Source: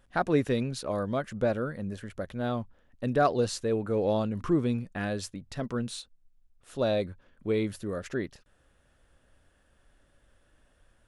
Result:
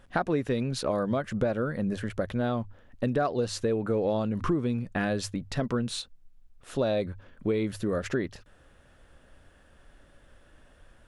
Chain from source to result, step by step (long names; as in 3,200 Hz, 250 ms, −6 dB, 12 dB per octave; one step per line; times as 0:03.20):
high-shelf EQ 5,800 Hz −6.5 dB
mains-hum notches 50/100 Hz
downward compressor 5 to 1, threshold −33 dBFS, peak gain reduction 13 dB
level +8.5 dB